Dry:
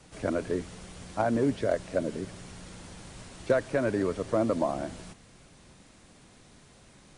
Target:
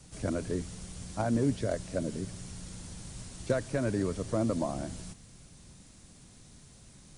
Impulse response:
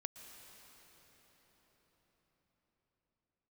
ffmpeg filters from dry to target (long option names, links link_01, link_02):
-af "bass=frequency=250:gain=10,treble=frequency=4000:gain=11,volume=-6dB"